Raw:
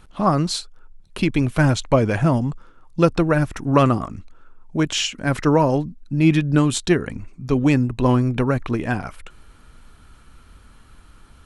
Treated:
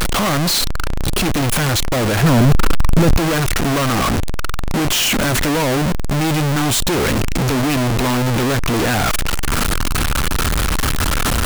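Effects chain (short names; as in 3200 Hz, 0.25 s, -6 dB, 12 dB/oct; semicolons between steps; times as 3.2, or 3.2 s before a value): infinite clipping; 2.23–3.17 low shelf 370 Hz +8.5 dB; gain +4.5 dB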